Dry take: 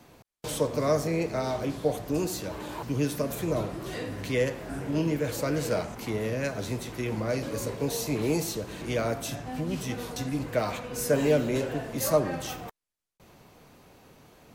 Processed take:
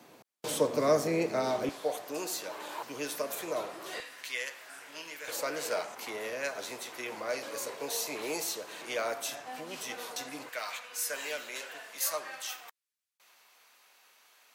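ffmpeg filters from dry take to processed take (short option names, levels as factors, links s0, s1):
-af "asetnsamples=n=441:p=0,asendcmd='1.69 highpass f 610;4 highpass f 1500;5.28 highpass f 650;10.49 highpass f 1400',highpass=230"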